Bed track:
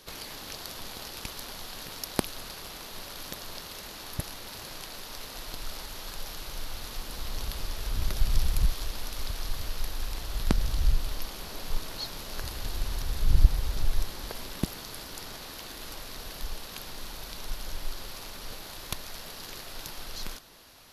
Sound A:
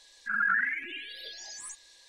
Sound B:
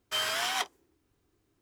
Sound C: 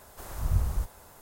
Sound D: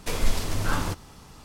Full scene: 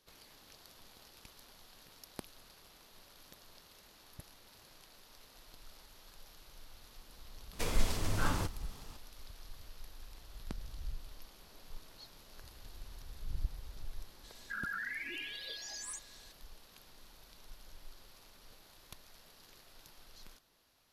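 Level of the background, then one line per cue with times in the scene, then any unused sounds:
bed track -18 dB
7.53 add D -6.5 dB
14.24 add A -1.5 dB + compressor, threshold -36 dBFS
not used: B, C

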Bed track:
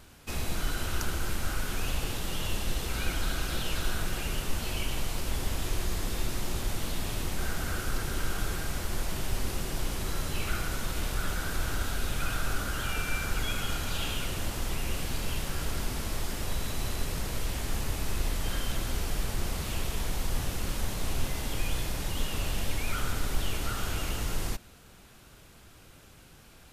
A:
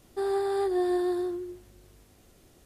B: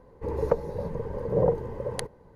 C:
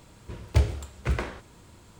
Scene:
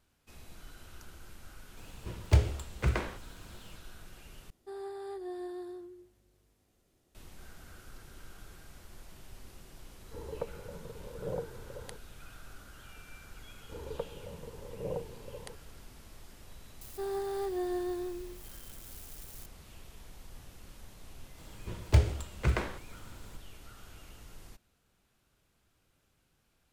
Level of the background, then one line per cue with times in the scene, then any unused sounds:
bed track -19.5 dB
1.77 add C -2 dB
4.5 replace with A -14 dB
9.9 add B -14 dB
13.48 add B -14 dB + vibrato 1.4 Hz 5.2 cents
16.81 add A -7.5 dB + switching spikes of -35 dBFS
21.38 add C -1.5 dB

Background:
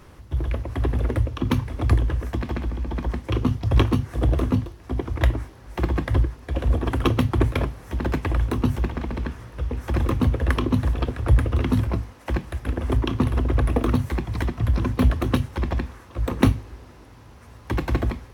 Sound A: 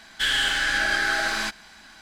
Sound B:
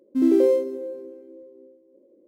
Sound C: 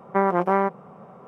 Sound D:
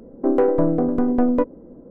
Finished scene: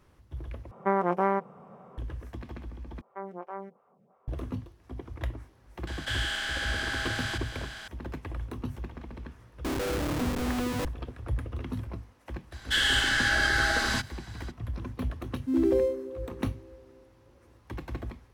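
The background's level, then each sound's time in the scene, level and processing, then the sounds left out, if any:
background -14 dB
0.71 replace with C -5 dB
3.01 replace with C -17 dB + photocell phaser 2.8 Hz
5.87 add A -13 dB + per-bin compression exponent 0.4
9.41 add D -10.5 dB + Schmitt trigger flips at -26 dBFS
12.51 add A -2 dB, fades 0.02 s + notch 2400 Hz, Q 10
15.32 add B -6.5 dB

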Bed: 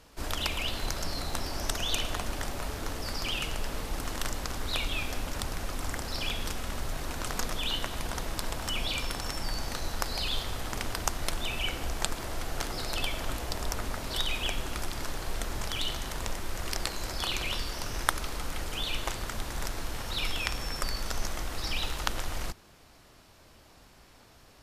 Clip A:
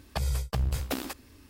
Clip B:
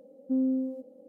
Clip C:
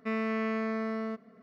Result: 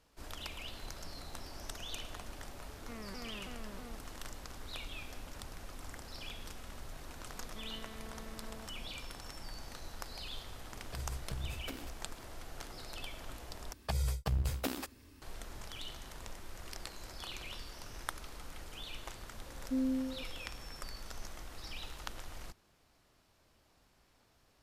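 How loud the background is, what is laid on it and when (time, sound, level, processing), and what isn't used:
bed -13 dB
2.82 add C -17.5 dB + shaped vibrato saw down 3.1 Hz, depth 250 cents
7.51 add C -5.5 dB + compressor 4:1, threshold -45 dBFS
10.77 add A -11 dB + rotary speaker horn 7.5 Hz
13.73 replace with A -4.5 dB
19.41 add B -4.5 dB + fixed phaser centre 360 Hz, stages 4

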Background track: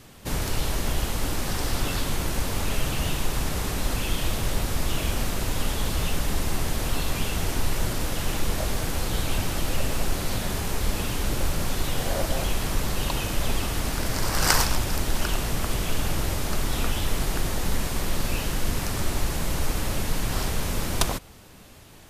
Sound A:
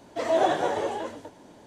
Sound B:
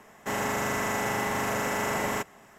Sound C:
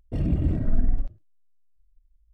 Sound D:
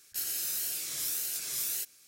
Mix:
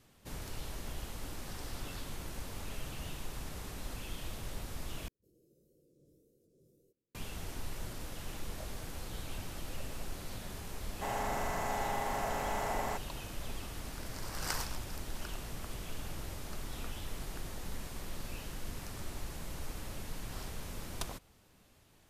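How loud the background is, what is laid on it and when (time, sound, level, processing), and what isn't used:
background track -16 dB
5.08 replace with D -9 dB + elliptic low-pass 520 Hz
10.75 add B -12 dB + bell 750 Hz +10.5 dB
not used: A, C

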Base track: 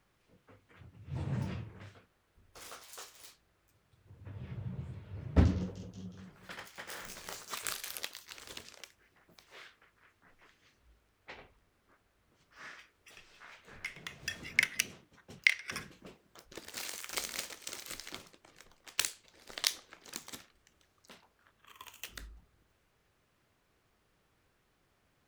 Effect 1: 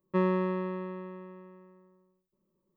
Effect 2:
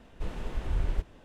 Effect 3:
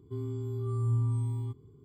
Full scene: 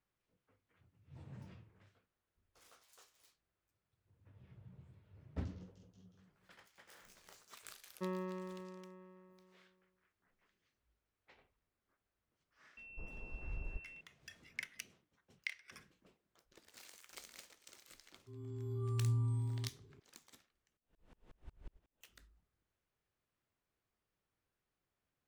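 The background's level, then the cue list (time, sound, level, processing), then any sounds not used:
base track -16.5 dB
7.87 add 1 -14 dB
12.77 add 2 -15 dB + pulse-width modulation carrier 2700 Hz
18.16 add 3 -6 dB + opening faded in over 0.58 s
20.77 replace with 2 -17.5 dB + dB-ramp tremolo swelling 5.5 Hz, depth 37 dB

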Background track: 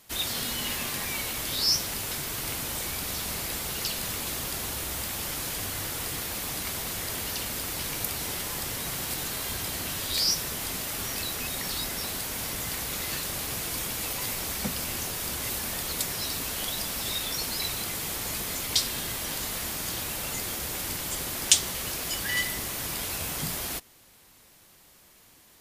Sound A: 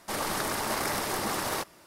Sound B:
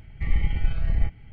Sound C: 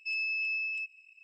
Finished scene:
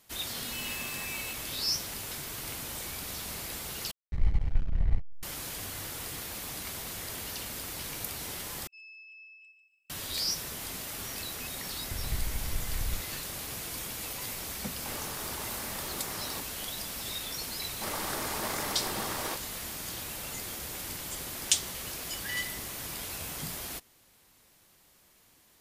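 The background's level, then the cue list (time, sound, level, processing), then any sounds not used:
background track -6 dB
0.47 add C -14.5 dB + sample leveller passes 5
3.91 replace with B -3 dB + backlash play -22 dBFS
8.67 replace with C -17.5 dB + lo-fi delay 0.146 s, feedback 35%, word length 11-bit, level -8 dB
11.91 add B -12.5 dB + three-band squash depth 100%
14.77 add A -8.5 dB + negative-ratio compressor -34 dBFS
17.73 add A -5 dB

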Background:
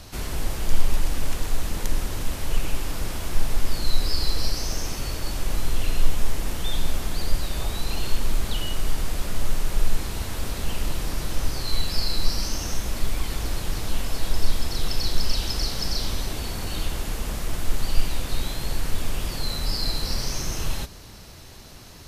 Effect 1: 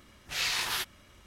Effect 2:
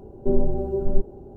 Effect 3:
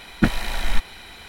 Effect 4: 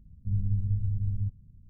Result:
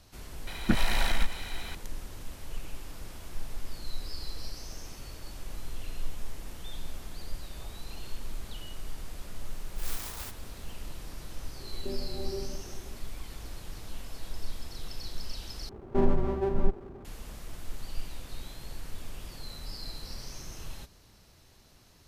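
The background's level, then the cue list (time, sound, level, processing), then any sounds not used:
background -14.5 dB
0.47 add 3 -0.5 dB + compressor, threshold -18 dBFS
9.47 add 1 -9.5 dB + clock jitter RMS 0.14 ms
11.6 add 2 -8.5 dB + compressor 3:1, threshold -24 dBFS
15.69 replace with 2 -2.5 dB + minimum comb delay 0.51 ms
not used: 4

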